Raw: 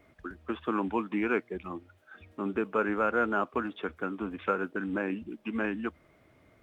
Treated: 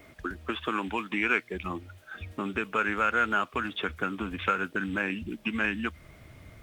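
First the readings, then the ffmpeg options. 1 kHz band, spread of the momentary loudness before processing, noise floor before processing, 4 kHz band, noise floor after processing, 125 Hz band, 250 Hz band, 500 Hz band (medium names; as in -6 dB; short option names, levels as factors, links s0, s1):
+3.0 dB, 12 LU, -63 dBFS, no reading, -54 dBFS, +3.5 dB, -1.5 dB, -3.5 dB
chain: -filter_complex "[0:a]asubboost=boost=3.5:cutoff=160,acrossover=split=1500[s0][s1];[s0]acompressor=threshold=0.0126:ratio=6[s2];[s1]highshelf=f=2200:g=7.5[s3];[s2][s3]amix=inputs=2:normalize=0,volume=2.37"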